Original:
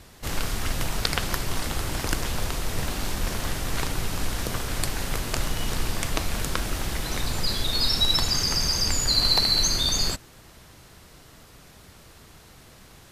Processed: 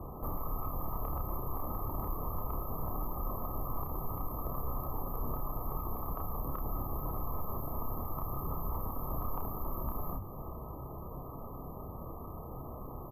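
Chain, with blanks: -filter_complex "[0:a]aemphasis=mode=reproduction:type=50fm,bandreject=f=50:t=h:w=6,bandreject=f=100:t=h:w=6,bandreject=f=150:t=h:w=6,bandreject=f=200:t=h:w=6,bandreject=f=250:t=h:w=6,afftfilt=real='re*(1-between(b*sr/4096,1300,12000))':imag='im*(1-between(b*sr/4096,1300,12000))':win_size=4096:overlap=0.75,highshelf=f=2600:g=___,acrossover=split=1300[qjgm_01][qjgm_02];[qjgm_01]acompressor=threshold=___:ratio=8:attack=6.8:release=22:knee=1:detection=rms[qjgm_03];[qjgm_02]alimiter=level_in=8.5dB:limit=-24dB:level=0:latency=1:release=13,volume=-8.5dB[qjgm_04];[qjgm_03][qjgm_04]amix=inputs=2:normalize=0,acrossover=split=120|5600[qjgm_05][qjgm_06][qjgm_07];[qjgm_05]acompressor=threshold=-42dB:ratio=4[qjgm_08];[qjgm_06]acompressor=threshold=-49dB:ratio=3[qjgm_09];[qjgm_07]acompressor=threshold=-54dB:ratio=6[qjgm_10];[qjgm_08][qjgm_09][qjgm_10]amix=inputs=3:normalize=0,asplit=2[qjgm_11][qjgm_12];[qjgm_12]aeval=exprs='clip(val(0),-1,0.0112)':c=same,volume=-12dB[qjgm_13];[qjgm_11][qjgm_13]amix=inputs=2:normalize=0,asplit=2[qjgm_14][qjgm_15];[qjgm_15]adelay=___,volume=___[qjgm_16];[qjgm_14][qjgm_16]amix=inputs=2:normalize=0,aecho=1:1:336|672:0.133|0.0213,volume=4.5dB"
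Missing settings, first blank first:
11, -38dB, 30, -3.5dB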